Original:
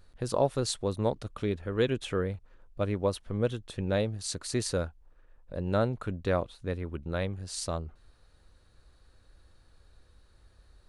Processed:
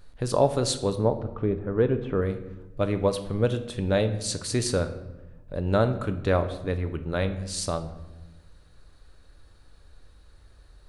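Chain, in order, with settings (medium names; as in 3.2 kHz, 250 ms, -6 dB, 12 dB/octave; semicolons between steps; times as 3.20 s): 0.99–2.22 s: low-pass 1.2 kHz 12 dB/octave; on a send: reverberation RT60 1.0 s, pre-delay 7 ms, DRR 8.5 dB; on the sum: trim +4.5 dB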